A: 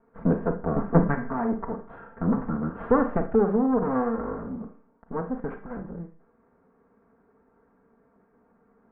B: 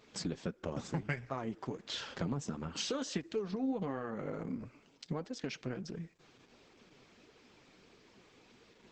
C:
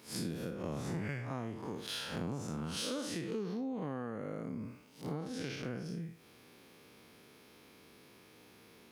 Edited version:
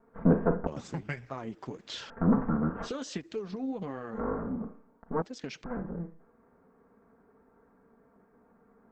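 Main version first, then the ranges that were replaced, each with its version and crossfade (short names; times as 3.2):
A
0.67–2.1 from B
2.87–4.18 from B, crossfade 0.10 s
5.22–5.64 from B
not used: C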